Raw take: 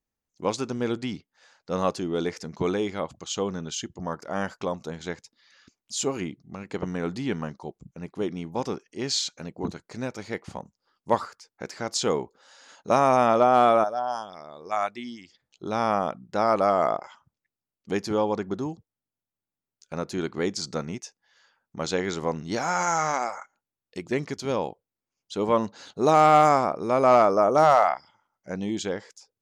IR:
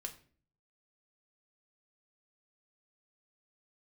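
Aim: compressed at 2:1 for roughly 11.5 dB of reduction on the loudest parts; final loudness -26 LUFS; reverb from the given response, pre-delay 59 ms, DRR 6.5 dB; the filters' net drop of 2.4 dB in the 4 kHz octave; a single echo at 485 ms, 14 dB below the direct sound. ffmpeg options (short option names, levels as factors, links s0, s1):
-filter_complex "[0:a]equalizer=f=4000:t=o:g=-3,acompressor=threshold=0.0178:ratio=2,aecho=1:1:485:0.2,asplit=2[s0][s1];[1:a]atrim=start_sample=2205,adelay=59[s2];[s1][s2]afir=irnorm=-1:irlink=0,volume=0.631[s3];[s0][s3]amix=inputs=2:normalize=0,volume=2.51"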